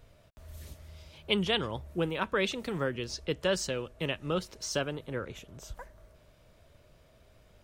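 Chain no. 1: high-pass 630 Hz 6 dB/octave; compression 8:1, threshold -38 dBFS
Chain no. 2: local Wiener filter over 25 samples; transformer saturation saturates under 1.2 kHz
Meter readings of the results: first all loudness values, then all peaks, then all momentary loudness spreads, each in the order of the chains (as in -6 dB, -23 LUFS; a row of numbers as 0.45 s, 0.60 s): -43.5 LUFS, -34.5 LUFS; -23.5 dBFS, -11.0 dBFS; 14 LU, 19 LU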